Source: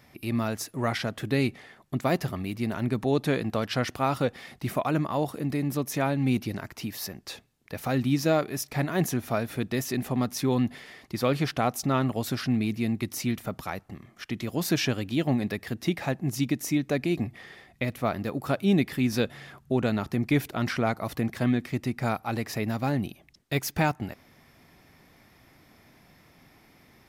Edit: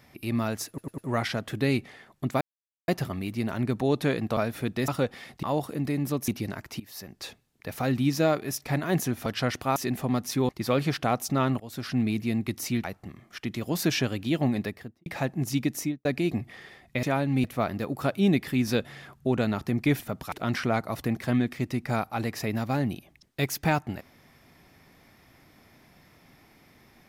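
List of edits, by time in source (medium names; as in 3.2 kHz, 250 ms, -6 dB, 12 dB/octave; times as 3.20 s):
0.68 s: stutter 0.10 s, 4 plays
2.11 s: insert silence 0.47 s
3.60–4.10 s: swap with 9.32–9.83 s
4.65–5.08 s: delete
5.93–6.34 s: move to 17.89 s
6.86–7.29 s: fade in, from -17 dB
10.56–11.03 s: delete
12.14–12.54 s: fade in, from -19.5 dB
13.38–13.70 s: move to 20.45 s
15.45–15.92 s: studio fade out
16.64–16.91 s: studio fade out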